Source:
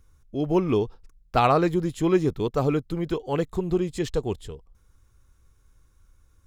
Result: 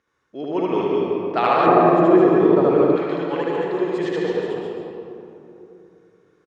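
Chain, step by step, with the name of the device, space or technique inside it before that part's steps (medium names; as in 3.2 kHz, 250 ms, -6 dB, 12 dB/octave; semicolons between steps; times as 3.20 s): station announcement (band-pass 340–3800 Hz; peaking EQ 1.8 kHz +7 dB 0.27 oct; loudspeakers at several distances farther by 26 m 0 dB, 74 m -6 dB; reverberation RT60 2.9 s, pre-delay 111 ms, DRR -1.5 dB); 1.66–2.96 s: tilt shelf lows +7.5 dB, about 1.2 kHz; trim -1 dB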